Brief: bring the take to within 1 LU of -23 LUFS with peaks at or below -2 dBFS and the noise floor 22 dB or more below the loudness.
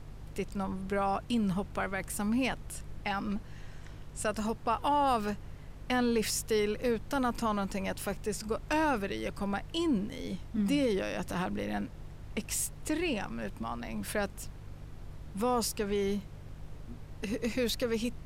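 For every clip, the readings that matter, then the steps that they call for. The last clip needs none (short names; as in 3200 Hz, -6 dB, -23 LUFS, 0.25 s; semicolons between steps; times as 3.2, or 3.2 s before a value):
hum 50 Hz; harmonics up to 150 Hz; hum level -47 dBFS; noise floor -47 dBFS; noise floor target -55 dBFS; loudness -33.0 LUFS; peak -18.5 dBFS; loudness target -23.0 LUFS
-> de-hum 50 Hz, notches 3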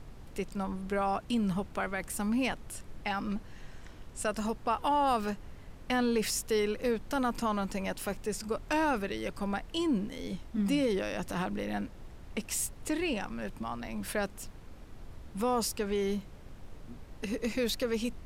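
hum none; noise floor -49 dBFS; noise floor target -55 dBFS
-> noise print and reduce 6 dB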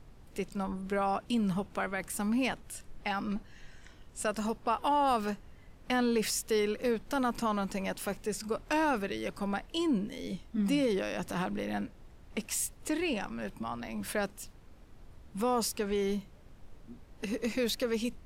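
noise floor -55 dBFS; loudness -33.0 LUFS; peak -18.5 dBFS; loudness target -23.0 LUFS
-> gain +10 dB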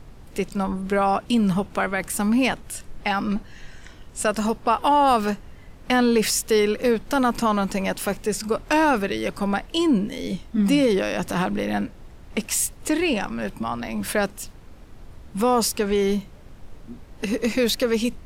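loudness -23.0 LUFS; peak -8.5 dBFS; noise floor -45 dBFS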